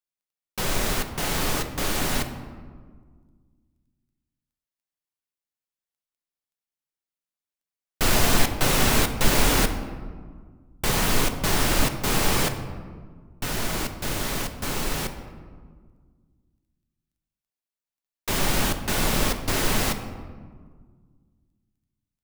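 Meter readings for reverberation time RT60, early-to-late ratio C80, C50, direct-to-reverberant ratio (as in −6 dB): 1.7 s, 11.0 dB, 9.5 dB, 7.0 dB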